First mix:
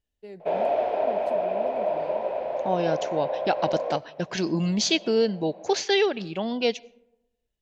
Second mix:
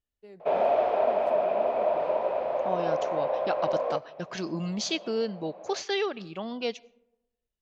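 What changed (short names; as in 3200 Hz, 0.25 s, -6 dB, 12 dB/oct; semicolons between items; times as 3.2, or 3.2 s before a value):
first voice -7.0 dB; second voice -7.0 dB; master: add bell 1200 Hz +9.5 dB 0.35 oct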